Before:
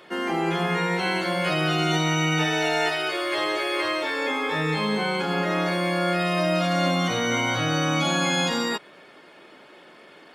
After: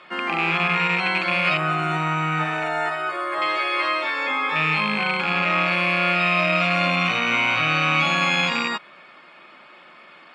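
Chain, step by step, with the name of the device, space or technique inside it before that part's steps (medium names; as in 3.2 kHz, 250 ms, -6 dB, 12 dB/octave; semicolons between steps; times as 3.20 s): car door speaker with a rattle (rattle on loud lows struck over -32 dBFS, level -17 dBFS; cabinet simulation 100–7400 Hz, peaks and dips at 110 Hz -7 dB, 290 Hz -6 dB, 430 Hz -10 dB, 1.2 kHz +9 dB, 2.4 kHz +8 dB, 6.1 kHz -10 dB); 1.57–3.42 s: high-order bell 3.6 kHz -12 dB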